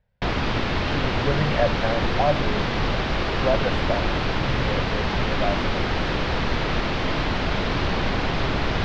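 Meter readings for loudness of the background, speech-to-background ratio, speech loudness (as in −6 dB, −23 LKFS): −24.5 LKFS, −4.0 dB, −28.5 LKFS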